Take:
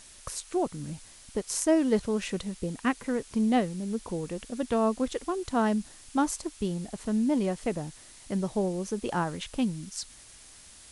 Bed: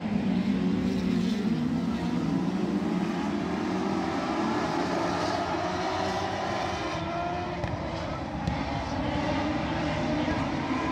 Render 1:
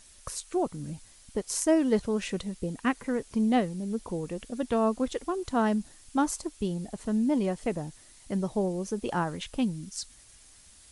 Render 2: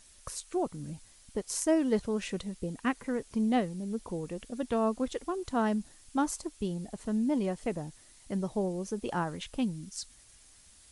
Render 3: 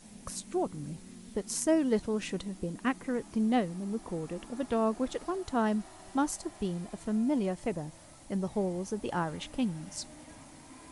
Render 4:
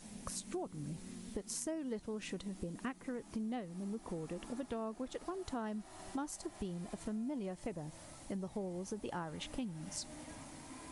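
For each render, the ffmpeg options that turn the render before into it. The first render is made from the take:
ffmpeg -i in.wav -af "afftdn=noise_reduction=6:noise_floor=-52" out.wav
ffmpeg -i in.wav -af "volume=-3dB" out.wav
ffmpeg -i in.wav -i bed.wav -filter_complex "[1:a]volume=-23.5dB[link_01];[0:a][link_01]amix=inputs=2:normalize=0" out.wav
ffmpeg -i in.wav -af "acompressor=threshold=-39dB:ratio=5" out.wav

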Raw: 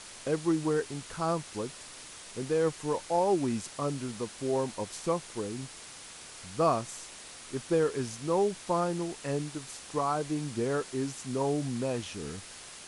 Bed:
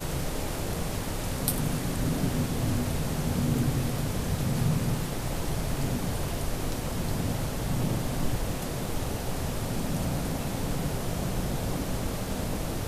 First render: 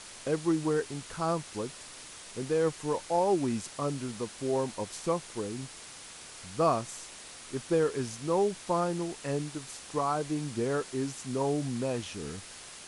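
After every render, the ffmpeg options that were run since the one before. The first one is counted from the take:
ffmpeg -i in.wav -af anull out.wav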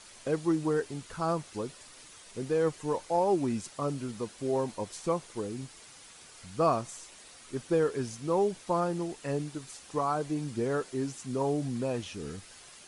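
ffmpeg -i in.wav -af "afftdn=noise_reduction=7:noise_floor=-47" out.wav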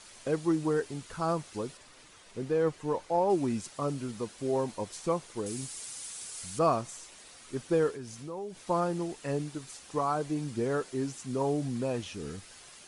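ffmpeg -i in.wav -filter_complex "[0:a]asettb=1/sr,asplit=3[link_01][link_02][link_03];[link_01]atrim=end=1.774[link_04];[link_02]atrim=start=1.77:end=3.3,asetpts=PTS-STARTPTS,afade=type=in:duration=0.004:curve=qsin,afade=type=out:start_time=1.526:duration=0.004:curve=qsin,highshelf=frequency=4900:gain=-9[link_05];[link_03]atrim=start=3.296[link_06];[link_04][link_05]acrossfade=duration=0.004:curve1=hsin:curve2=qsin[link_07];[link_07][link_06]acrossfade=duration=0.004:curve1=qsin:curve2=hsin,asettb=1/sr,asplit=3[link_08][link_09][link_10];[link_08]atrim=end=5.464[link_11];[link_09]atrim=start=5.46:end=6.59,asetpts=PTS-STARTPTS,afade=type=in:duration=0.004:curve=qsin,afade=type=out:start_time=1.126:duration=0.004:curve=qsin,equalizer=frequency=9400:width=0.5:gain=13.5[link_12];[link_10]atrim=start=6.586[link_13];[link_11][link_12]acrossfade=duration=0.004:curve1=hsin:curve2=qsin[link_14];[link_14][link_13]acrossfade=duration=0.004:curve1=qsin:curve2=hsin,asettb=1/sr,asplit=3[link_15][link_16][link_17];[link_15]atrim=end=7.914[link_18];[link_16]atrim=start=7.91:end=8.6,asetpts=PTS-STARTPTS,afade=type=in:duration=0.004:curve=qsin,afade=type=out:start_time=0.686:duration=0.004:curve=qsin,acompressor=threshold=-41dB:ratio=2.5:attack=3.2:release=140:knee=1:detection=peak[link_19];[link_17]atrim=start=8.596[link_20];[link_18][link_19]acrossfade=duration=0.004:curve1=hsin:curve2=qsin[link_21];[link_21][link_20]acrossfade=duration=0.004:curve1=qsin:curve2=hsin" out.wav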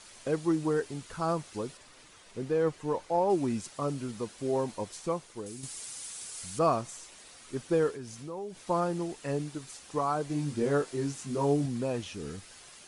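ffmpeg -i in.wav -filter_complex "[0:a]asettb=1/sr,asplit=3[link_01][link_02][link_03];[link_01]atrim=end=10.284[link_04];[link_02]atrim=start=10.28:end=11.66,asetpts=PTS-STARTPTS,afade=type=in:duration=0.004:curve=qsin,afade=type=out:start_time=1.376:duration=0.004:curve=qsin,asplit=2[link_05][link_06];[link_06]adelay=21,volume=-3dB[link_07];[link_05][link_07]amix=inputs=2:normalize=0,atrim=end_sample=60858[link_08];[link_03]atrim=start=11.656[link_09];[link_04][link_08]acrossfade=duration=0.004:curve1=hsin:curve2=qsin[link_10];[link_10][link_09]acrossfade=duration=0.004:curve1=qsin:curve2=hsin,asplit=2[link_11][link_12];[link_11]atrim=end=5.63,asetpts=PTS-STARTPTS,afade=type=out:start_time=4.8:duration=0.83:silence=0.421697[link_13];[link_12]atrim=start=5.63,asetpts=PTS-STARTPTS,afade=type=in:duration=0.004:curve=hsin:silence=0.421697[link_14];[link_13][link_14]concat=n=2:v=0:a=1" out.wav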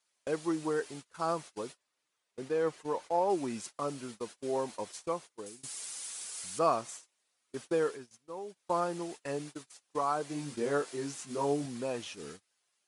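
ffmpeg -i in.wav -af "highpass=frequency=460:poles=1,agate=range=-27dB:threshold=-44dB:ratio=16:detection=peak" out.wav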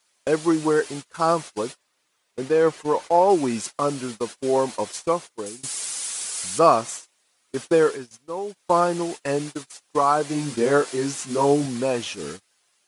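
ffmpeg -i in.wav -af "volume=12dB" out.wav

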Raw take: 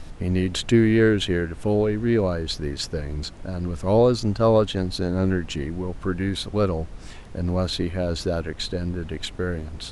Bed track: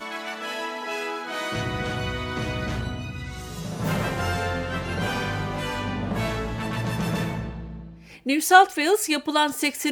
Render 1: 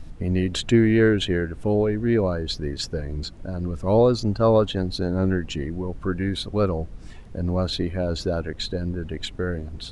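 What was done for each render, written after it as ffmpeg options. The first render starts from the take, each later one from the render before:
ffmpeg -i in.wav -af "afftdn=noise_reduction=8:noise_floor=-40" out.wav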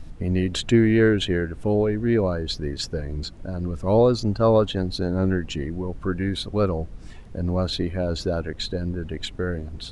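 ffmpeg -i in.wav -af anull out.wav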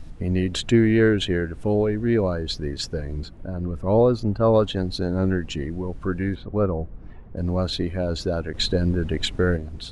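ffmpeg -i in.wav -filter_complex "[0:a]asettb=1/sr,asplit=3[link_01][link_02][link_03];[link_01]atrim=end=3.224[link_04];[link_02]atrim=start=3.22:end=4.54,asetpts=PTS-STARTPTS,afade=type=in:duration=0.004:curve=qsin,afade=type=out:start_time=1.316:duration=0.004:curve=qsin,equalizer=frequency=6200:width=0.6:gain=-11[link_05];[link_03]atrim=start=4.536[link_06];[link_04][link_05]acrossfade=duration=0.004:curve1=hsin:curve2=qsin[link_07];[link_07][link_06]acrossfade=duration=0.004:curve1=qsin:curve2=hsin,asplit=3[link_08][link_09][link_10];[link_08]afade=type=out:start_time=6.34:duration=0.02[link_11];[link_09]lowpass=1400,afade=type=in:start_time=6.34:duration=0.02,afade=type=out:start_time=7.36:duration=0.02[link_12];[link_10]afade=type=in:start_time=7.36:duration=0.02[link_13];[link_11][link_12][link_13]amix=inputs=3:normalize=0,asettb=1/sr,asplit=3[link_14][link_15][link_16];[link_14]atrim=end=8.544[link_17];[link_15]atrim=start=8.54:end=9.57,asetpts=PTS-STARTPTS,afade=type=in:duration=0.004:curve=qsin,afade=type=out:start_time=1.026:duration=0.004:curve=qsin,acontrast=51[link_18];[link_16]atrim=start=9.566[link_19];[link_17][link_18]acrossfade=duration=0.004:curve1=hsin:curve2=qsin[link_20];[link_20][link_19]acrossfade=duration=0.004:curve1=qsin:curve2=hsin" out.wav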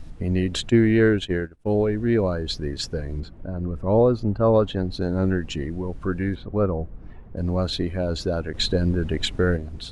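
ffmpeg -i in.wav -filter_complex "[0:a]asplit=3[link_01][link_02][link_03];[link_01]afade=type=out:start_time=0.68:duration=0.02[link_04];[link_02]agate=range=-33dB:threshold=-21dB:ratio=3:release=100:detection=peak,afade=type=in:start_time=0.68:duration=0.02,afade=type=out:start_time=1.78:duration=0.02[link_05];[link_03]afade=type=in:start_time=1.78:duration=0.02[link_06];[link_04][link_05][link_06]amix=inputs=3:normalize=0,asettb=1/sr,asplit=3[link_07][link_08][link_09];[link_07]atrim=end=3.204[link_10];[link_08]atrim=start=3.2:end=5.01,asetpts=PTS-STARTPTS,afade=type=in:duration=0.004:curve=qsin,afade=type=out:start_time=1.806:duration=0.004:curve=qsin,highshelf=frequency=3500:gain=-9[link_11];[link_09]atrim=start=5.006[link_12];[link_10][link_11]acrossfade=duration=0.004:curve1=hsin:curve2=qsin[link_13];[link_13][link_12]acrossfade=duration=0.004:curve1=qsin:curve2=hsin" out.wav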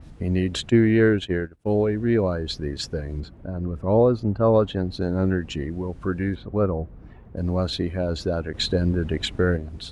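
ffmpeg -i in.wav -af "highpass=43,adynamicequalizer=threshold=0.00794:dfrequency=3300:dqfactor=0.7:tfrequency=3300:tqfactor=0.7:attack=5:release=100:ratio=0.375:range=2:mode=cutabove:tftype=highshelf" out.wav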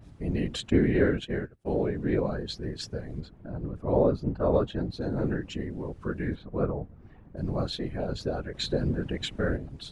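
ffmpeg -i in.wav -af "afftfilt=real='hypot(re,im)*cos(2*PI*random(0))':imag='hypot(re,im)*sin(2*PI*random(1))':win_size=512:overlap=0.75" out.wav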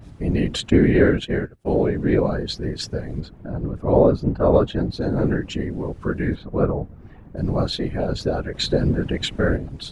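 ffmpeg -i in.wav -af "volume=8dB,alimiter=limit=-3dB:level=0:latency=1" out.wav

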